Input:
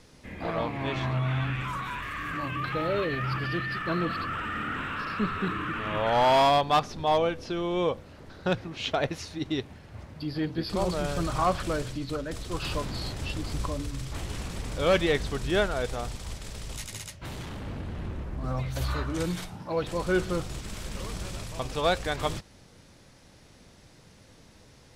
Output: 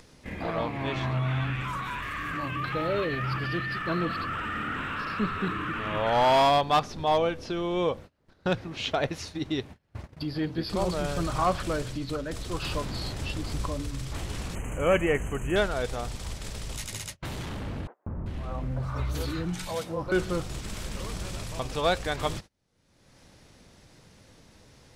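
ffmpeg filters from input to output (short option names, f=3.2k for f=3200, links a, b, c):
-filter_complex "[0:a]asettb=1/sr,asplit=3[a][b][c];[a]atrim=end=14.554[d];[b]atrim=start=14.55:end=15.56,asetpts=PTS-STARTPTS,afade=t=in:d=0.004:c=qsin,afade=t=out:st=1.006:d=0.004:c=qsin,asuperstop=centerf=4400:order=20:qfactor=1.4[e];[c]atrim=start=15.556[f];[d][e]acrossfade=d=0.004:c1=hsin:c2=qsin[g];[g][f]acrossfade=d=0.004:c1=qsin:c2=hsin,asettb=1/sr,asplit=3[h][i][j];[h]atrim=end=17.874[k];[i]atrim=start=17.87:end=20.12,asetpts=PTS-STARTPTS,afade=t=in:d=0.004:c=qsin,afade=t=out:st=2.246:d=0.004:c=qsin,acrossover=split=450|1400[l][m][n];[l]adelay=190[o];[n]adelay=390[p];[o][m][p]amix=inputs=3:normalize=0,atrim=end_sample=99225[q];[j]atrim=start=20.116[r];[k][q]acrossfade=d=0.004:c1=hsin:c2=qsin[s];[s][r]acrossfade=d=0.004:c1=qsin:c2=hsin,agate=range=-31dB:threshold=-41dB:ratio=16:detection=peak,acompressor=mode=upward:threshold=-30dB:ratio=2.5"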